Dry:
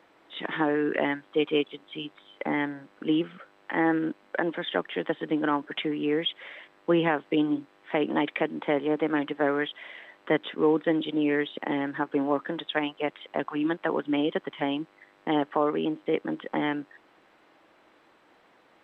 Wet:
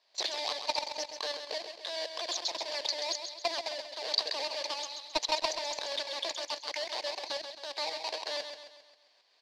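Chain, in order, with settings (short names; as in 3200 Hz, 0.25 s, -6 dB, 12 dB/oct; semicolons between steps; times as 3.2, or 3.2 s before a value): half-waves squared off; HPF 200 Hz 12 dB/oct; bell 670 Hz -13.5 dB 0.28 oct; level quantiser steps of 18 dB; tremolo saw up 1.9 Hz, depth 60%; soft clip -26 dBFS, distortion -7 dB; synth low-pass 2300 Hz, resonance Q 6.5; feedback echo 0.266 s, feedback 48%, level -8 dB; speed mistake 7.5 ips tape played at 15 ips; gain +1 dB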